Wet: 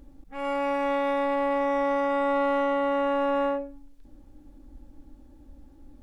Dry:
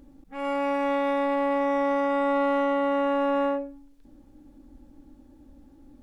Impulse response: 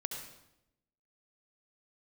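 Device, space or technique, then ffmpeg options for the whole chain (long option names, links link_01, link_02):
low shelf boost with a cut just above: -af "lowshelf=frequency=88:gain=6.5,equalizer=frequency=230:width_type=o:width=1.1:gain=-4"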